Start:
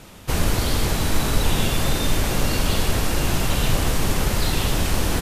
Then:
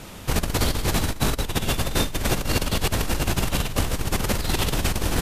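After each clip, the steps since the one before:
compressor whose output falls as the input rises −22 dBFS, ratio −0.5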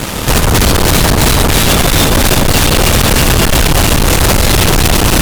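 delay that swaps between a low-pass and a high-pass 162 ms, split 1,400 Hz, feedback 82%, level −5 dB
fuzz pedal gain 33 dB, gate −42 dBFS
level +6.5 dB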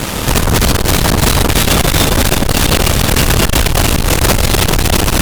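saturating transformer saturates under 73 Hz

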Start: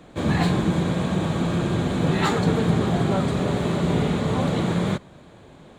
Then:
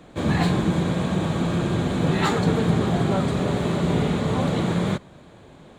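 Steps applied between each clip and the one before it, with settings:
no processing that can be heard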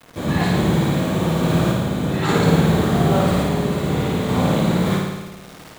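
bit reduction 7 bits
sample-and-hold tremolo
flutter between parallel walls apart 9.5 metres, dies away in 1.2 s
level +3 dB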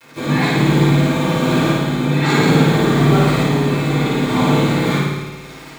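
convolution reverb RT60 0.50 s, pre-delay 3 ms, DRR −5 dB
level −2 dB

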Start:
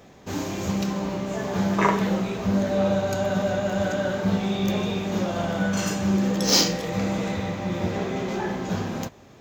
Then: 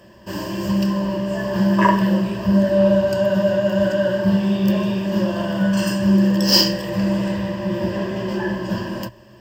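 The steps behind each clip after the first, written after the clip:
EQ curve with evenly spaced ripples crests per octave 1.3, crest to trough 16 dB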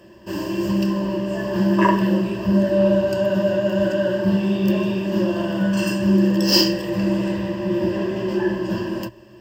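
hollow resonant body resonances 340/2,700 Hz, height 9 dB, ringing for 35 ms
level −2.5 dB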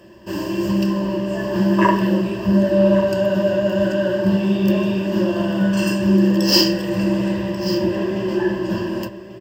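single-tap delay 1,138 ms −14.5 dB
level +1.5 dB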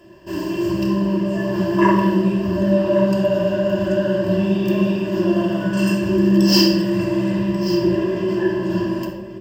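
rectangular room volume 2,700 cubic metres, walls furnished, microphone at 3.1 metres
level −4 dB

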